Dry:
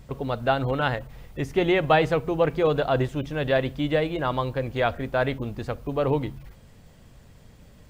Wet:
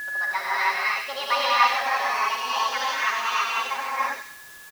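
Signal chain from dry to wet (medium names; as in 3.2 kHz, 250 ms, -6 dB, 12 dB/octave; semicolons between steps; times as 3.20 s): gliding tape speed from 138% -> 197%; Chebyshev high-pass 1.5 kHz, order 2; treble shelf 2.1 kHz -8.5 dB; comb 7.4 ms, depth 64%; on a send: feedback echo behind a high-pass 96 ms, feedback 40%, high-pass 2.1 kHz, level -3.5 dB; on the sum: whistle 1.7 kHz -29 dBFS; gated-style reverb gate 350 ms rising, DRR -7.5 dB; in parallel at -8.5 dB: word length cut 6-bit, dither triangular; on the sum: trim -3.5 dB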